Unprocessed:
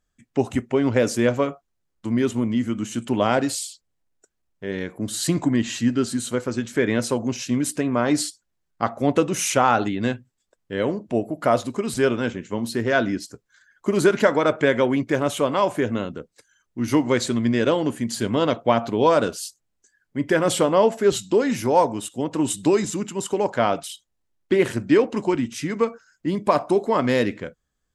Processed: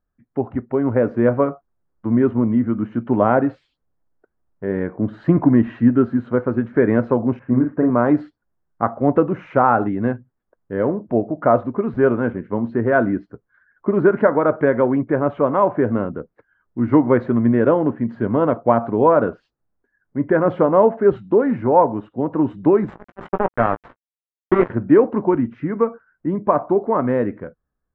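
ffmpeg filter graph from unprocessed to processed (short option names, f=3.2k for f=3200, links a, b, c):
-filter_complex "[0:a]asettb=1/sr,asplit=3[a][b][c];[a]atrim=end=7.394[d];[b]atrim=start=7.39:end=7.9,asetpts=PTS-STARTPTS,afade=t=in:d=0.004:c=qsin,afade=t=out:st=0.506:d=0.004:c=qsin,lowpass=f=1.8k:w=0.5412,lowpass=f=1.8k:w=1.3066,agate=range=-33dB:threshold=-48dB:ratio=3:release=100:detection=peak,asplit=2[e][f];[f]adelay=39,volume=-5dB[g];[e][g]amix=inputs=2:normalize=0,atrim=end_sample=22491[h];[c]atrim=start=7.896[i];[d][h]acrossfade=d=0.004:c1=hsin:c2=qsin[j];[j][i]acrossfade=d=0.004:c1=qsin:c2=hsin,asettb=1/sr,asplit=3[k][l][m];[k]atrim=end=22.884[n];[l]atrim=start=22.88:end=24.7,asetpts=PTS-STARTPTS,afade=t=in:d=0.004:c=qsin,afade=t=out:st=1.816:d=0.004:c=qsin,aemphasis=mode=production:type=75fm,acrusher=bits=2:mix=0:aa=0.5,asplit=2[o][p];[p]adelay=17,volume=-11.5dB[q];[o][q]amix=inputs=2:normalize=0,atrim=end_sample=80262[r];[m]atrim=start=24.696[s];[n][r]acrossfade=d=0.004:c1=hsin:c2=qsin[t];[t][s]acrossfade=d=0.004:c1=qsin:c2=hsin,lowpass=f=1.5k:w=0.5412,lowpass=f=1.5k:w=1.3066,dynaudnorm=f=290:g=7:m=11.5dB,volume=-1dB"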